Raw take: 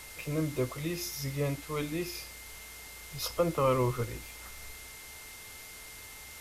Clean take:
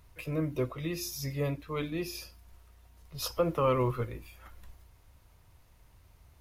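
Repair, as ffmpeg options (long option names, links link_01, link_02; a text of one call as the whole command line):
ffmpeg -i in.wav -af "bandreject=frequency=439.4:width_type=h:width=4,bandreject=frequency=878.8:width_type=h:width=4,bandreject=frequency=1318.2:width_type=h:width=4,bandreject=frequency=1757.6:width_type=h:width=4,bandreject=frequency=2197:width_type=h:width=4,bandreject=frequency=2636.4:width_type=h:width=4,bandreject=frequency=2100:width=30,afwtdn=0.0045" out.wav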